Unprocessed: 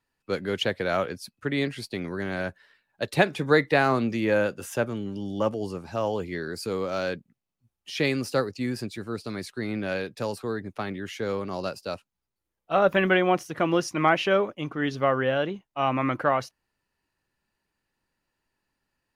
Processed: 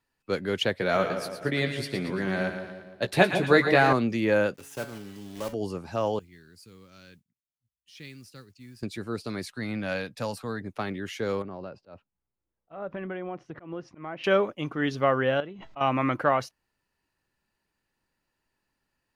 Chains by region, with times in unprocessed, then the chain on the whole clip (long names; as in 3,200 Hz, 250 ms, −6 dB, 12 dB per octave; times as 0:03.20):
0:00.78–0:03.93: double-tracking delay 16 ms −6.5 dB + echo with a time of its own for lows and highs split 960 Hz, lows 155 ms, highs 114 ms, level −8 dB
0:04.54–0:05.53: one scale factor per block 3 bits + tuned comb filter 140 Hz, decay 0.58 s, mix 70%
0:06.19–0:08.83: guitar amp tone stack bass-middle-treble 6-0-2 + noise that follows the level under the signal 23 dB
0:09.44–0:10.61: parametric band 380 Hz −12 dB 0.39 octaves + upward compression, threshold −47 dBFS
0:11.42–0:14.24: head-to-tape spacing loss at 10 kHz 39 dB + downward compressor 3 to 1, threshold −35 dBFS + volume swells 138 ms
0:15.40–0:15.81: high-frequency loss of the air 180 metres + tuned comb filter 660 Hz, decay 0.2 s, mix 70% + background raised ahead of every attack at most 37 dB per second
whole clip: no processing